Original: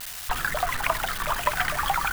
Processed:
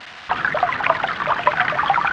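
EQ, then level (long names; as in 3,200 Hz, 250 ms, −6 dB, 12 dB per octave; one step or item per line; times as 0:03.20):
band-pass filter 160–3,000 Hz
high-frequency loss of the air 110 metres
+8.5 dB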